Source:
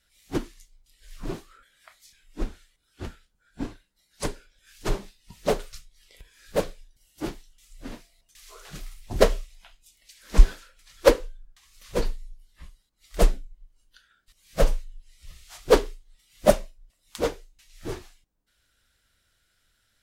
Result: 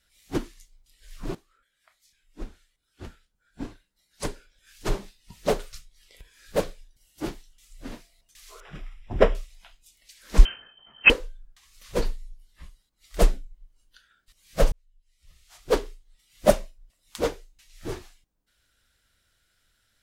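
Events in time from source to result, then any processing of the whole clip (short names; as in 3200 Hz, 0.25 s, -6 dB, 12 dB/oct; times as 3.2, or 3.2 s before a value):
1.35–4.98 fade in, from -14.5 dB
8.6–9.35 polynomial smoothing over 25 samples
10.45–11.1 inverted band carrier 3100 Hz
14.72–16.58 fade in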